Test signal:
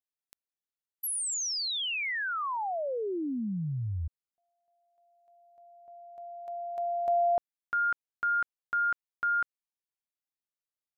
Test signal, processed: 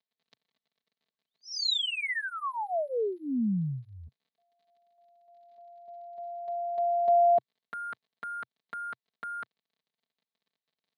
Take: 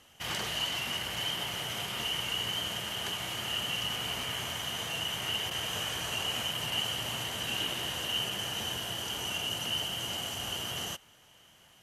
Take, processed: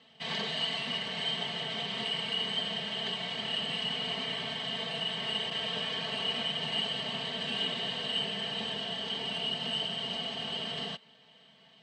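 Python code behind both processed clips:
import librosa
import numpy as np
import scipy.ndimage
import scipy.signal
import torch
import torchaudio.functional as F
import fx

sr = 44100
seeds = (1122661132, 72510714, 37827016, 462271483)

y = fx.dmg_crackle(x, sr, seeds[0], per_s=33.0, level_db=-58.0)
y = np.repeat(scipy.signal.resample_poly(y, 1, 4), 4)[:len(y)]
y = fx.cabinet(y, sr, low_hz=110.0, low_slope=24, high_hz=4800.0, hz=(130.0, 330.0, 920.0, 1400.0, 2600.0, 4000.0), db=(4, -5, -4, -9, -4, 6))
y = y + 0.97 * np.pad(y, (int(4.5 * sr / 1000.0), 0))[:len(y)]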